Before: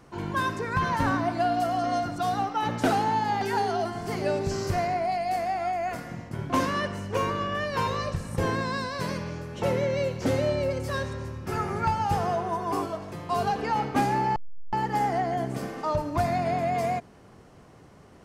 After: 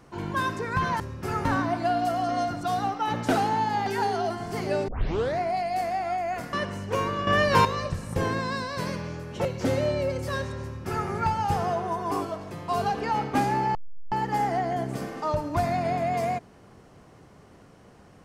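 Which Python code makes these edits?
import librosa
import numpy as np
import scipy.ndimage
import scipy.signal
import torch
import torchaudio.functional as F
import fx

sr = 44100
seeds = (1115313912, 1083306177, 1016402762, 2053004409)

y = fx.edit(x, sr, fx.tape_start(start_s=4.43, length_s=0.51),
    fx.cut(start_s=6.08, length_s=0.67),
    fx.clip_gain(start_s=7.49, length_s=0.38, db=8.0),
    fx.cut(start_s=9.67, length_s=0.39),
    fx.duplicate(start_s=11.24, length_s=0.45, to_s=1.0), tone=tone)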